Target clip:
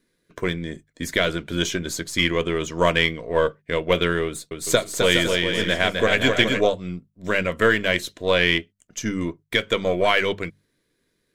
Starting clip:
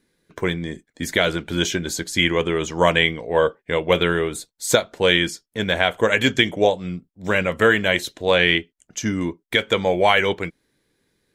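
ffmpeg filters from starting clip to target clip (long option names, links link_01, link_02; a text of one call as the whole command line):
ffmpeg -i in.wav -filter_complex "[0:a]aeval=exprs='if(lt(val(0),0),0.708*val(0),val(0))':channel_layout=same,asuperstop=centerf=820:order=4:qfactor=5.4,bandreject=frequency=50:width_type=h:width=6,bandreject=frequency=100:width_type=h:width=6,bandreject=frequency=150:width_type=h:width=6,bandreject=frequency=200:width_type=h:width=6,asettb=1/sr,asplit=3[link_01][link_02][link_03];[link_01]atrim=end=4.254[link_04];[link_02]atrim=start=4.25:end=6.61,asetpts=PTS-STARTPTS,afade=type=in:duration=0.004:curve=qsin,afade=type=out:start_time=2.356:duration=0.004:curve=qsin,aecho=1:1:260|416|509.6|565.8|599.5:0.631|0.398|0.251|0.158|0.1,atrim=end_sample=104076[link_05];[link_03]atrim=start=6.606[link_06];[link_04][link_05]acrossfade=duration=0.004:curve1=hsin:curve2=qsin[link_07];[link_07][link_06]acrossfade=duration=0.004:curve1=qsin:curve2=hsin,volume=-1dB" out.wav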